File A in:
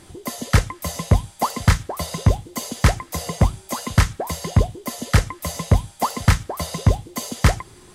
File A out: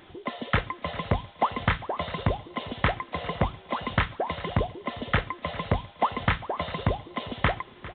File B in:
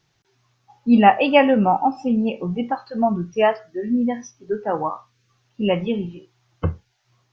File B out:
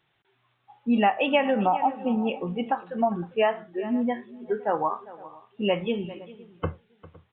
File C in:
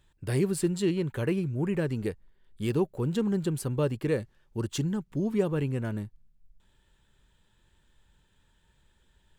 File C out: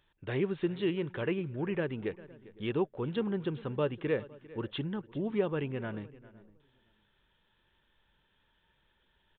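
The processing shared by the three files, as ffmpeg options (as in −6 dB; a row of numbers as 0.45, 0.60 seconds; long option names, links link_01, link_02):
-filter_complex "[0:a]lowshelf=frequency=230:gain=-11.5,asplit=2[link_01][link_02];[link_02]aecho=0:1:400:0.106[link_03];[link_01][link_03]amix=inputs=2:normalize=0,aresample=8000,aresample=44100,asplit=2[link_04][link_05];[link_05]adelay=510,lowpass=frequency=1100:poles=1,volume=-22dB,asplit=2[link_06][link_07];[link_07]adelay=510,lowpass=frequency=1100:poles=1,volume=0.19[link_08];[link_06][link_08]amix=inputs=2:normalize=0[link_09];[link_04][link_09]amix=inputs=2:normalize=0,acompressor=threshold=-18dB:ratio=6"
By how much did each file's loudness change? −7.5, −6.0, −4.5 LU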